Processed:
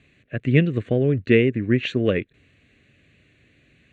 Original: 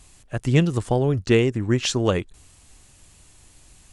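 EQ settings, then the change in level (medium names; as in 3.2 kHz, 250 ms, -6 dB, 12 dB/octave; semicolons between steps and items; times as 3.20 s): cabinet simulation 160–3900 Hz, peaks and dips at 180 Hz -4 dB, 340 Hz -4 dB, 780 Hz -6 dB, 1.3 kHz -9 dB, 3.2 kHz -9 dB; static phaser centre 2.2 kHz, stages 4; +6.0 dB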